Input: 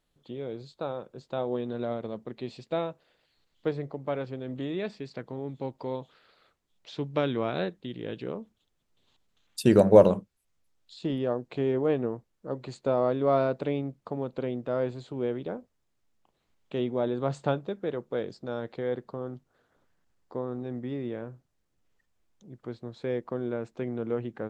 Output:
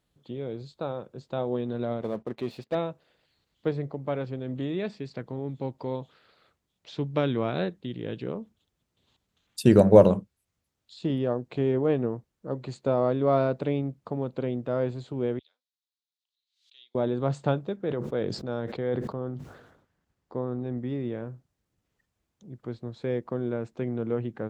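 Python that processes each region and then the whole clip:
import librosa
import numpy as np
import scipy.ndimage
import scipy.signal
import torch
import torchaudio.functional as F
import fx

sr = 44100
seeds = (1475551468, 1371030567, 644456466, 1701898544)

y = fx.chain(x, sr, fx.lowpass(hz=2300.0, slope=6),
    fx.low_shelf(hz=230.0, db=-10.5),
    fx.leveller(passes=2), at=(2.01, 2.75))
y = fx.chain(y, sr, fx.ladder_bandpass(hz=4300.0, resonance_pct=65),
    fx.pre_swell(db_per_s=110.0), at=(15.39, 16.95))
y = fx.chain(y, sr, fx.high_shelf(hz=5300.0, db=-5.5),
    fx.sustainer(db_per_s=56.0), at=(17.76, 20.78))
y = scipy.signal.sosfilt(scipy.signal.butter(2, 60.0, 'highpass', fs=sr, output='sos'), y)
y = fx.low_shelf(y, sr, hz=170.0, db=8.0)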